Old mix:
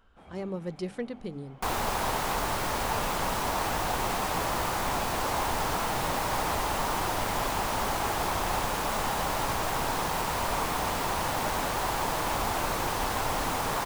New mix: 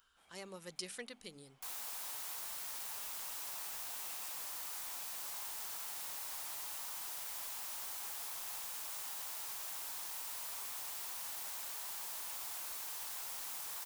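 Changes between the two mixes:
speech +8.5 dB
second sound −7.5 dB
master: add first-order pre-emphasis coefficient 0.97

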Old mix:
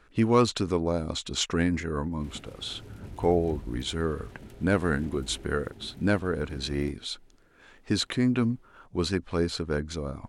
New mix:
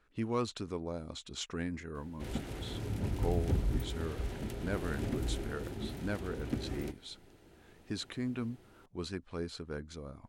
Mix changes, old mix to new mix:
speech −12.0 dB
background +7.5 dB

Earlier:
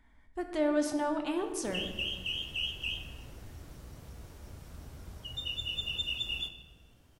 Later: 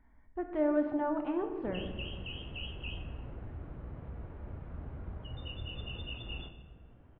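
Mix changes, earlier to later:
background +4.5 dB
master: add Gaussian smoothing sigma 4.4 samples

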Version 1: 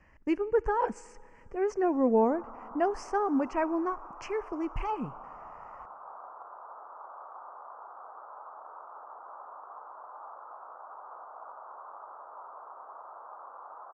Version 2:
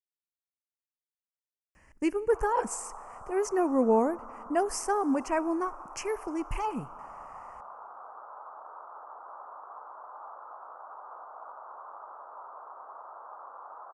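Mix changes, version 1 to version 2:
speech: entry +1.75 s
master: remove high-frequency loss of the air 180 metres

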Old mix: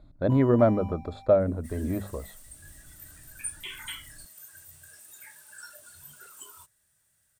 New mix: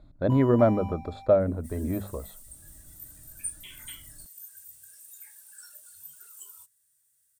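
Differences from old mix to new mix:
first sound +3.5 dB
second sound: add first-order pre-emphasis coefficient 0.8

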